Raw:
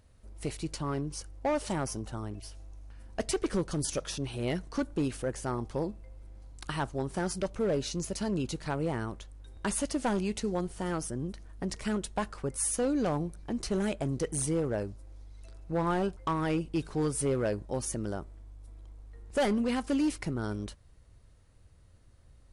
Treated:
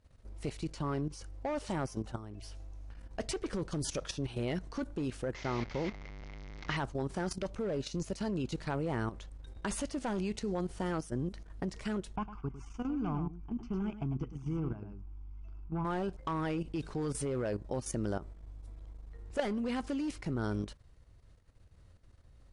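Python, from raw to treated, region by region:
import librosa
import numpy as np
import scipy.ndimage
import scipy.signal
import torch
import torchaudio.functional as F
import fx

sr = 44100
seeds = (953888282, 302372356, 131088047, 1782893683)

y = fx.chain(x, sr, fx.delta_mod(bps=32000, step_db=-36.0),
    fx.peak_eq(hz=2100.0, db=12.5, octaves=0.23), at=(5.34, 6.77))
y = fx.chain(y, sr, fx.spacing_loss(db_at_10k=32),
    fx.fixed_phaser(hz=2700.0, stages=8),
    fx.echo_single(ms=104, db=-8.5), at=(12.16, 15.85))
y = fx.level_steps(y, sr, step_db=12)
y = scipy.signal.sosfilt(scipy.signal.bessel(2, 6600.0, 'lowpass', norm='mag', fs=sr, output='sos'), y)
y = y * 10.0 ** (2.5 / 20.0)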